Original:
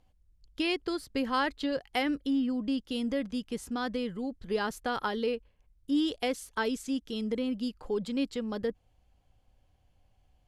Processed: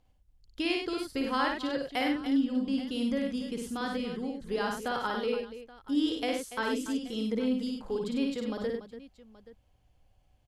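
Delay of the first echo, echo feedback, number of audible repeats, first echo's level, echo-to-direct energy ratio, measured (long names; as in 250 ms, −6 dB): 55 ms, repeats not evenly spaced, 4, −3.5 dB, −1.5 dB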